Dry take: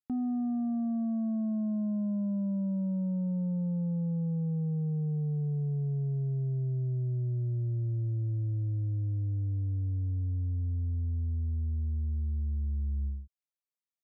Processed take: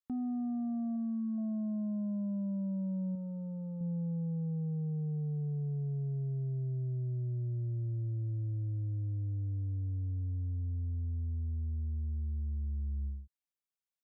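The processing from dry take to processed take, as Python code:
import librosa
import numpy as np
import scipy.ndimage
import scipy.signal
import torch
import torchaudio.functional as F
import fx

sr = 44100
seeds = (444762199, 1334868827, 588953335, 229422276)

y = fx.notch(x, sr, hz=670.0, q=12.0, at=(0.96, 1.38))
y = fx.peak_eq(y, sr, hz=160.0, db=-5.0, octaves=1.6, at=(3.15, 3.81))
y = y * 10.0 ** (-4.0 / 20.0)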